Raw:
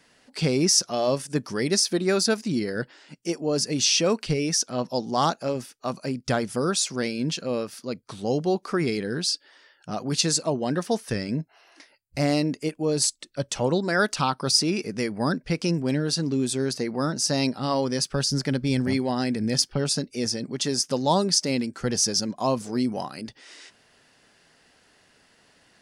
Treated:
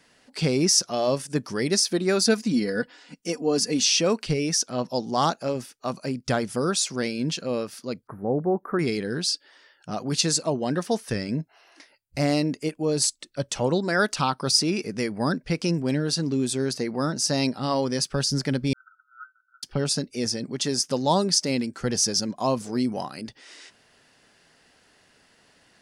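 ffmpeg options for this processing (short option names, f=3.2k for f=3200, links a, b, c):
-filter_complex "[0:a]asettb=1/sr,asplit=3[a][b][c];[a]atrim=end=2.214[d];[b]atrim=start=2.21:end=3.83,asetpts=PTS-STARTPTS,afade=t=in:d=0.004:c=qsin,afade=t=out:st=1.616:d=0.004:c=qsin,aecho=1:1:4.1:0.64,atrim=end_sample=71442[e];[c]atrim=start=3.826[f];[d][e]acrossfade=d=0.004:c1=hsin:c2=qsin[g];[g][f]acrossfade=d=0.004:c1=qsin:c2=hsin,asettb=1/sr,asplit=3[h][i][j];[h]atrim=end=8.074[k];[i]atrim=start=8.07:end=8.79,asetpts=PTS-STARTPTS,afade=t=in:d=0.004:c=qsin,afade=t=out:st=0.716:d=0.004:c=qsin,asuperstop=centerf=5000:order=12:qfactor=0.5[l];[j]atrim=start=8.786[m];[k][l]acrossfade=d=0.004:c1=hsin:c2=qsin[n];[n][m]acrossfade=d=0.004:c1=qsin:c2=hsin,asettb=1/sr,asplit=3[o][p][q];[o]atrim=end=18.734[r];[p]atrim=start=18.73:end=19.63,asetpts=PTS-STARTPTS,afade=t=in:d=0.004:c=qsin,afade=t=out:st=0.896:d=0.004:c=qsin,asuperpass=centerf=1400:order=20:qfactor=5.4[s];[q]atrim=start=19.626[t];[r][s]acrossfade=d=0.004:c1=hsin:c2=qsin[u];[u][t]acrossfade=d=0.004:c1=qsin:c2=hsin"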